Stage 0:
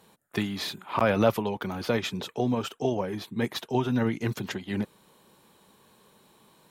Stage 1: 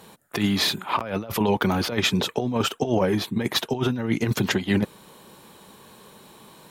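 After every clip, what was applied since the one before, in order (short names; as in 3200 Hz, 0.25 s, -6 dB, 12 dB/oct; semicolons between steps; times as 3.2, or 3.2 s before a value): negative-ratio compressor -29 dBFS, ratio -0.5; gain +7.5 dB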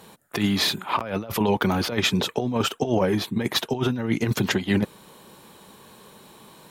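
nothing audible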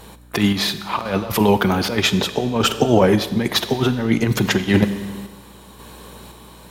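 hum 60 Hz, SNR 26 dB; Schroeder reverb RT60 1.6 s, combs from 31 ms, DRR 11.5 dB; random-step tremolo 1.9 Hz, depth 55%; gain +8 dB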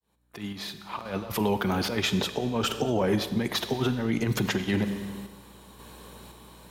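opening faded in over 1.81 s; limiter -9 dBFS, peak gain reduction 7 dB; gain -7 dB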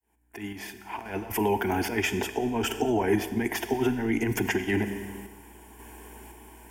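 fixed phaser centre 810 Hz, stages 8; gain +4 dB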